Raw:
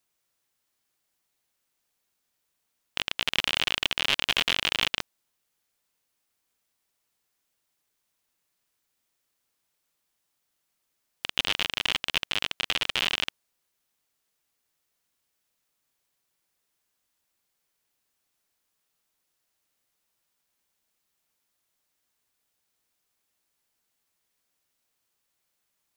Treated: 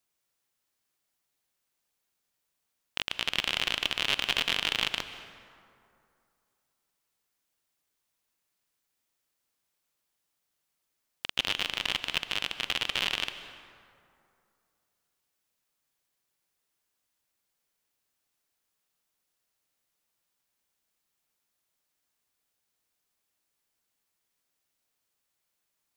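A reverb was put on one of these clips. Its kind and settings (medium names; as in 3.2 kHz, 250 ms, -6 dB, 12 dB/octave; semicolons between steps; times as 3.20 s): plate-style reverb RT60 2.5 s, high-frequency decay 0.5×, pre-delay 120 ms, DRR 11 dB; trim -3 dB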